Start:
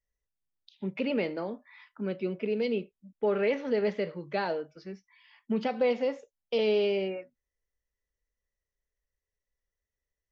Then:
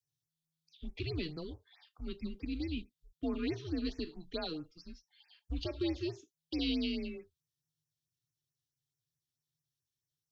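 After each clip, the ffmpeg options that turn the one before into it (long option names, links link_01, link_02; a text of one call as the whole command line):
ffmpeg -i in.wav -af "highshelf=frequency=2800:width_type=q:width=3:gain=9,afreqshift=-160,afftfilt=real='re*(1-between(b*sr/1024,650*pow(3800/650,0.5+0.5*sin(2*PI*4.6*pts/sr))/1.41,650*pow(3800/650,0.5+0.5*sin(2*PI*4.6*pts/sr))*1.41))':imag='im*(1-between(b*sr/1024,650*pow(3800/650,0.5+0.5*sin(2*PI*4.6*pts/sr))/1.41,650*pow(3800/650,0.5+0.5*sin(2*PI*4.6*pts/sr))*1.41))':win_size=1024:overlap=0.75,volume=-8dB" out.wav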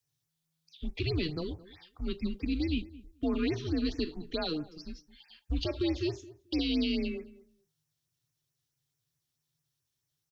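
ffmpeg -i in.wav -filter_complex "[0:a]alimiter=level_in=5dB:limit=-24dB:level=0:latency=1:release=55,volume=-5dB,asplit=2[link_01][link_02];[link_02]adelay=218,lowpass=frequency=1100:poles=1,volume=-18dB,asplit=2[link_03][link_04];[link_04]adelay=218,lowpass=frequency=1100:poles=1,volume=0.17[link_05];[link_01][link_03][link_05]amix=inputs=3:normalize=0,volume=7dB" out.wav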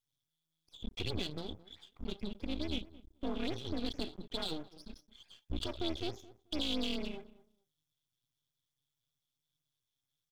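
ffmpeg -i in.wav -af "aeval=exprs='max(val(0),0)':channel_layout=same,equalizer=frequency=3400:width_type=o:width=0.21:gain=14.5,bandreject=frequency=1800:width=18,volume=-3dB" out.wav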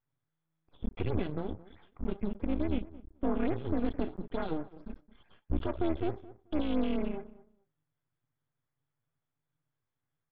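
ffmpeg -i in.wav -af "lowpass=frequency=1900:width=0.5412,lowpass=frequency=1900:width=1.3066,volume=7dB" out.wav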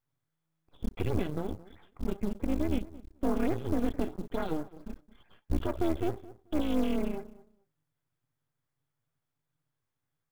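ffmpeg -i in.wav -af "acrusher=bits=7:mode=log:mix=0:aa=0.000001,volume=1.5dB" out.wav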